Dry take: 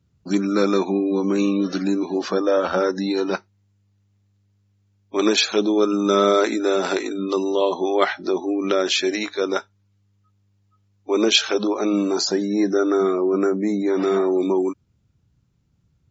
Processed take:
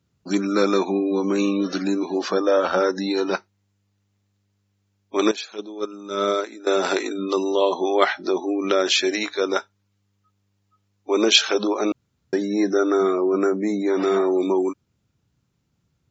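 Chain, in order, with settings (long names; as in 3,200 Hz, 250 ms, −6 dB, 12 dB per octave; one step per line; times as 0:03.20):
0:05.31–0:06.67: noise gate −14 dBFS, range −16 dB
0:11.92–0:12.33: fill with room tone
low-shelf EQ 160 Hz −12 dB
level +1.5 dB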